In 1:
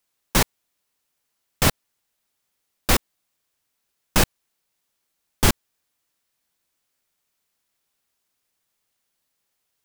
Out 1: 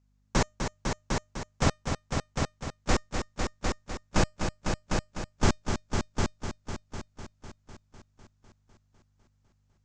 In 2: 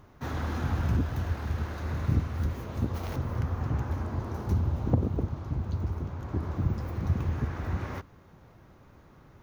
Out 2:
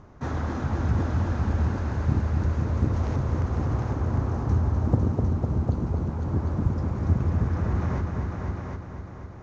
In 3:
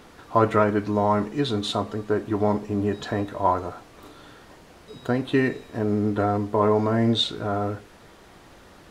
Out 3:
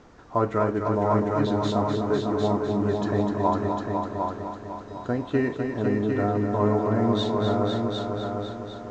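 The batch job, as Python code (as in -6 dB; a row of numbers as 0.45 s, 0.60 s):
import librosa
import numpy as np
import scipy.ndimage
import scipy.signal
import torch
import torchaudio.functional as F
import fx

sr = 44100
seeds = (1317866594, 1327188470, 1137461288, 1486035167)

p1 = fx.block_float(x, sr, bits=7)
p2 = scipy.signal.sosfilt(scipy.signal.butter(8, 7200.0, 'lowpass', fs=sr, output='sos'), p1)
p3 = fx.peak_eq(p2, sr, hz=3300.0, db=-8.0, octaves=1.7)
p4 = fx.rider(p3, sr, range_db=10, speed_s=0.5)
p5 = p3 + F.gain(torch.from_numpy(p4), 1.0).numpy()
p6 = fx.comb_fb(p5, sr, f0_hz=610.0, decay_s=0.23, harmonics='all', damping=0.0, mix_pct=30)
p7 = fx.add_hum(p6, sr, base_hz=50, snr_db=34)
p8 = p7 + fx.echo_heads(p7, sr, ms=251, heads='all three', feedback_pct=47, wet_db=-7.0, dry=0)
y = p8 * 10.0 ** (-9 / 20.0) / np.max(np.abs(p8))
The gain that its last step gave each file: -8.0 dB, -1.0 dB, -6.0 dB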